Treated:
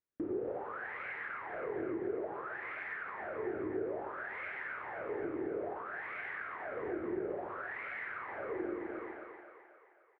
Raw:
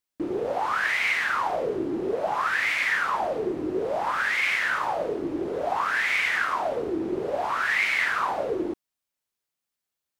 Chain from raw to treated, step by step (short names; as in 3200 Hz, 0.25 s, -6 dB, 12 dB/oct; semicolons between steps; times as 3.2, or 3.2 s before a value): ladder low-pass 2000 Hz, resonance 30%; doubler 48 ms -10.5 dB; de-hum 95.4 Hz, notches 31; on a send: split-band echo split 580 Hz, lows 0.124 s, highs 0.263 s, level -6 dB; on the sum: compressor 6:1, threshold -40 dBFS, peak gain reduction 14 dB; fifteen-band EQ 100 Hz +8 dB, 400 Hz +7 dB, 1000 Hz -5 dB; gain +1 dB